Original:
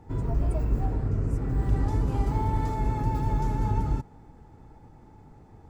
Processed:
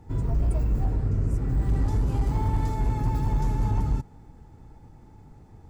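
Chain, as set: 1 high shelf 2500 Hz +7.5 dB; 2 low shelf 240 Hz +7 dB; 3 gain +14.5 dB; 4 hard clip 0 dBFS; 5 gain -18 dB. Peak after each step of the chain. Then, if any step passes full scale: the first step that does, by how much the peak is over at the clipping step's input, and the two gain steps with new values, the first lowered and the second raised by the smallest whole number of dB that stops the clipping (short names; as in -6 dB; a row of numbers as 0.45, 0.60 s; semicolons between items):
-12.5, -6.0, +8.5, 0.0, -18.0 dBFS; step 3, 8.5 dB; step 3 +5.5 dB, step 5 -9 dB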